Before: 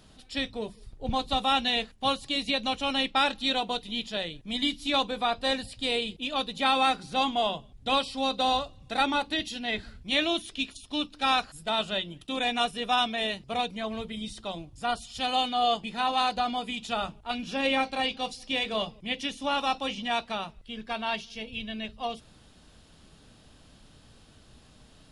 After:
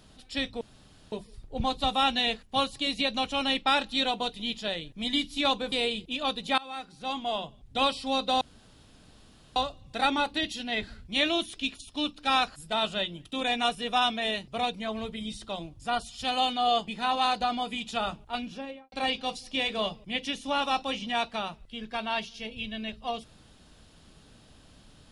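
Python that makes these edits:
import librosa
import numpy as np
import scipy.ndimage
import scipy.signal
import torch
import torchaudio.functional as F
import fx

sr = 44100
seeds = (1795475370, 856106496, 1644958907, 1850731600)

y = fx.studio_fade_out(x, sr, start_s=17.23, length_s=0.65)
y = fx.edit(y, sr, fx.insert_room_tone(at_s=0.61, length_s=0.51),
    fx.cut(start_s=5.21, length_s=0.62),
    fx.fade_in_from(start_s=6.69, length_s=1.24, floor_db=-23.5),
    fx.insert_room_tone(at_s=8.52, length_s=1.15), tone=tone)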